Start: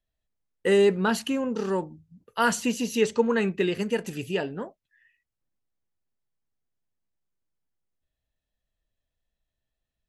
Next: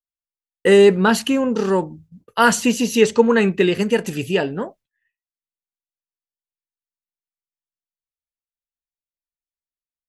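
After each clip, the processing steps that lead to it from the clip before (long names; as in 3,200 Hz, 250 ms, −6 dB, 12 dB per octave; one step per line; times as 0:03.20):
downward expander −50 dBFS
level +8.5 dB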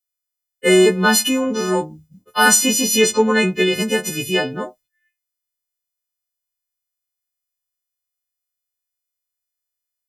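every partial snapped to a pitch grid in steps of 3 semitones
in parallel at −10 dB: soft clipping −8 dBFS, distortion −15 dB
on the sum: level −3 dB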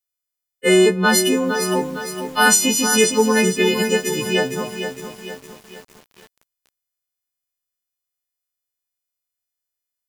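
feedback echo at a low word length 459 ms, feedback 55%, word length 6 bits, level −8 dB
level −1 dB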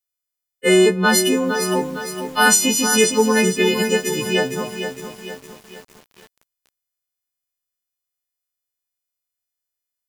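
no processing that can be heard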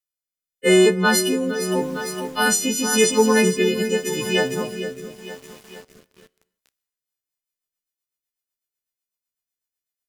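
rotating-speaker cabinet horn 0.85 Hz, later 8 Hz, at 0:06.69
convolution reverb, pre-delay 8 ms, DRR 19.5 dB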